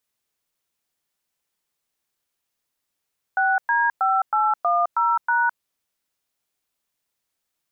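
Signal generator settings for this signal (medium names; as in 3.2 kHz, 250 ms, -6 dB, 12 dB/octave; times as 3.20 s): DTMF "6D5810#", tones 211 ms, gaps 108 ms, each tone -19.5 dBFS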